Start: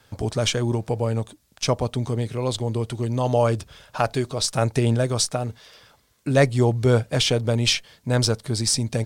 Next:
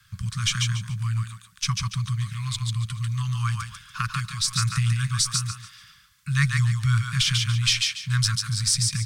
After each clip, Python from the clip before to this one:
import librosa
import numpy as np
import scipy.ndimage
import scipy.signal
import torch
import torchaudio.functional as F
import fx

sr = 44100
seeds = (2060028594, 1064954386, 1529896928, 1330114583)

y = scipy.signal.sosfilt(scipy.signal.cheby1(5, 1.0, [190.0, 1100.0], 'bandstop', fs=sr, output='sos'), x)
y = fx.echo_thinned(y, sr, ms=143, feedback_pct=27, hz=400.0, wet_db=-3.0)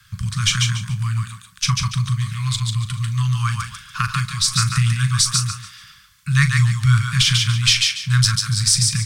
y = fx.doubler(x, sr, ms=39.0, db=-11.0)
y = F.gain(torch.from_numpy(y), 6.0).numpy()